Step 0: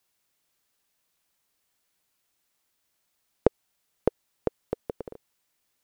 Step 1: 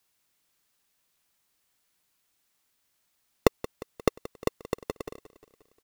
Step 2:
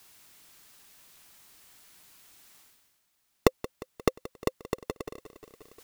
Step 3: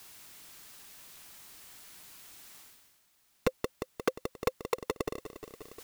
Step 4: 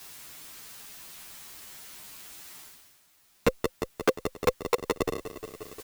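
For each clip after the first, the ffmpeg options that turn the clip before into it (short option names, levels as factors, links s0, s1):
-filter_complex "[0:a]acrossover=split=530[s0][s1];[s0]acrusher=samples=28:mix=1:aa=0.000001[s2];[s2][s1]amix=inputs=2:normalize=0,aecho=1:1:177|354|531|708|885:0.133|0.0773|0.0449|0.026|0.0151,volume=1.19"
-af "bandreject=f=520:w=12,areverse,acompressor=mode=upward:threshold=0.00891:ratio=2.5,areverse"
-filter_complex "[0:a]asplit=2[s0][s1];[s1]alimiter=limit=0.282:level=0:latency=1:release=29,volume=1.41[s2];[s0][s2]amix=inputs=2:normalize=0,aeval=exprs='0.211*(abs(mod(val(0)/0.211+3,4)-2)-1)':c=same,volume=0.708"
-filter_complex "[0:a]asplit=2[s0][s1];[s1]adelay=9.9,afreqshift=-0.66[s2];[s0][s2]amix=inputs=2:normalize=1,volume=2.82"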